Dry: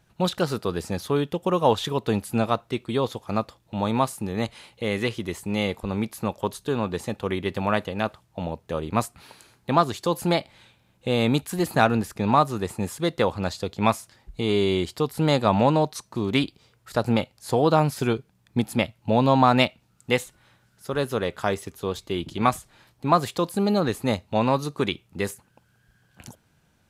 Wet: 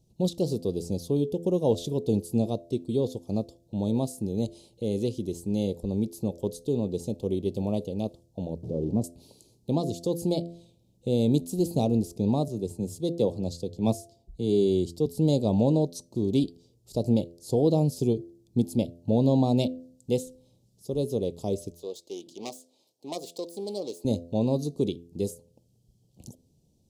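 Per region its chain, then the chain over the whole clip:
0:08.63–0:09.04: converter with a step at zero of −26 dBFS + resonant band-pass 230 Hz, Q 0.58
0:12.48–0:15.06: mains-hum notches 50/100 Hz + multiband upward and downward expander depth 40%
0:21.71–0:24.05: phase distortion by the signal itself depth 0.31 ms + high-pass filter 570 Hz + parametric band 11,000 Hz −3.5 dB 1 octave
whole clip: Chebyshev band-stop filter 440–5,400 Hz, order 2; high-shelf EQ 5,600 Hz −5.5 dB; hum removal 85.21 Hz, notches 8

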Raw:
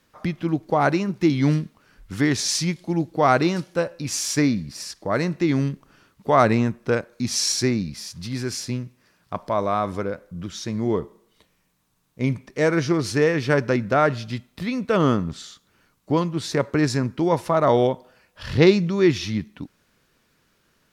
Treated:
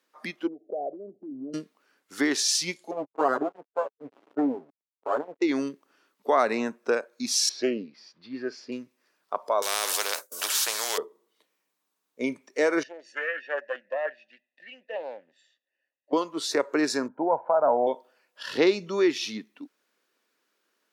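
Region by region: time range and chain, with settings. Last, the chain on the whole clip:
0:00.47–0:01.54: Butterworth low-pass 720 Hz 96 dB per octave + downward compressor, threshold −28 dBFS
0:02.91–0:05.42: lower of the sound and its delayed copy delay 7.2 ms + low-pass filter 1,300 Hz 24 dB per octave + slack as between gear wheels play −29.5 dBFS
0:07.49–0:08.72: high-frequency loss of the air 330 metres + highs frequency-modulated by the lows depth 0.2 ms
0:09.62–0:10.98: downward expander −38 dBFS + bass and treble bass −14 dB, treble +15 dB + every bin compressed towards the loudest bin 4 to 1
0:12.83–0:16.13: formant filter e + comb filter 1.1 ms, depth 79% + highs frequency-modulated by the lows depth 0.25 ms
0:17.08–0:17.87: low-pass filter 1,300 Hz 24 dB per octave + comb filter 1.3 ms, depth 58%
whole clip: noise reduction from a noise print of the clip's start 10 dB; high-pass filter 290 Hz 24 dB per octave; downward compressor 2 to 1, threshold −23 dBFS; level +1 dB

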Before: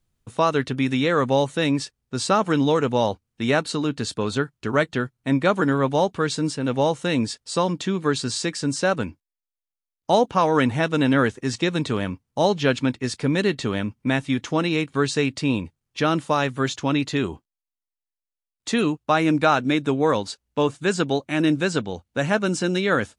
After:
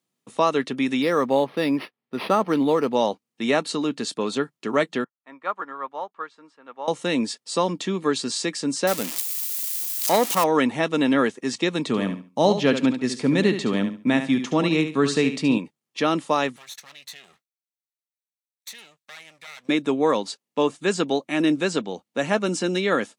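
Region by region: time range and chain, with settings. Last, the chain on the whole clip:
0:01.02–0:02.95: parametric band 6,700 Hz −4 dB 0.72 octaves + linearly interpolated sample-rate reduction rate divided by 6×
0:05.04–0:06.88: resonant band-pass 1,200 Hz, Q 2.1 + expander for the loud parts, over −45 dBFS
0:08.87–0:10.44: spike at every zero crossing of −13.5 dBFS + saturating transformer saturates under 880 Hz
0:11.87–0:15.58: bass and treble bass +7 dB, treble −1 dB + repeating echo 71 ms, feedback 24%, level −9.5 dB
0:16.56–0:19.69: lower of the sound and its delayed copy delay 0.5 ms + downward compressor, threshold −30 dBFS + guitar amp tone stack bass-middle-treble 10-0-10
whole clip: high-pass filter 190 Hz 24 dB per octave; notch filter 1,500 Hz, Q 8.7

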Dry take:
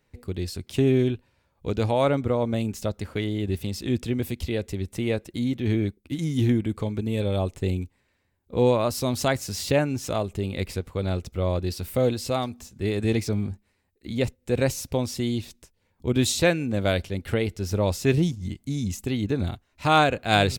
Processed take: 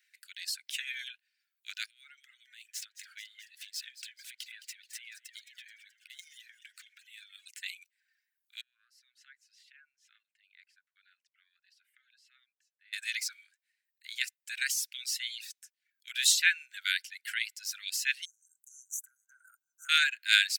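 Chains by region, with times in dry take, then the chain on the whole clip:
0:01.86–0:07.46: running median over 3 samples + downward compressor 12 to 1, threshold −34 dBFS + echo with shifted repeats 215 ms, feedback 61%, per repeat −150 Hz, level −10.5 dB
0:08.61–0:12.93: pair of resonant band-passes 460 Hz, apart 1.5 octaves + downward compressor 2 to 1, threshold −38 dBFS
0:18.25–0:19.89: linear-phase brick-wall band-stop 1,600–5,800 Hz + downward compressor 4 to 1, threshold −31 dBFS
whole clip: Butterworth high-pass 1,500 Hz 96 dB per octave; reverb reduction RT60 0.96 s; level +3 dB

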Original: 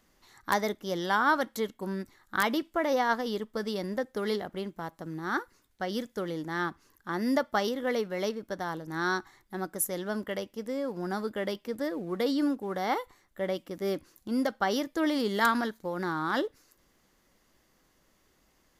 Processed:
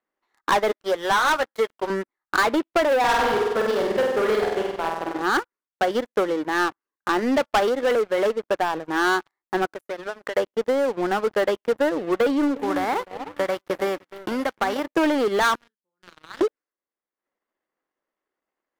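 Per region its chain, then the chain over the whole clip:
0:00.71–0:01.90: high-pass filter 630 Hz 6 dB per octave + double-tracking delay 13 ms −10 dB
0:02.99–0:05.22: mu-law and A-law mismatch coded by A + flutter between parallel walls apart 8.2 metres, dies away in 1.1 s
0:09.65–0:10.36: high-pass filter 350 Hz 6 dB per octave + downward compressor 12 to 1, threshold −40 dBFS
0:12.55–0:14.84: spectral envelope flattened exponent 0.6 + downward compressor 3 to 1, threshold −33 dBFS + delay that swaps between a low-pass and a high-pass 303 ms, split 1,100 Hz, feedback 50%, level −10 dB
0:15.55–0:16.41: guitar amp tone stack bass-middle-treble 6-0-2 + double-tracking delay 39 ms −6 dB
whole clip: three-way crossover with the lows and the highs turned down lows −23 dB, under 290 Hz, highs −17 dB, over 2,500 Hz; leveller curve on the samples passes 5; transient designer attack +4 dB, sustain −10 dB; level −3.5 dB

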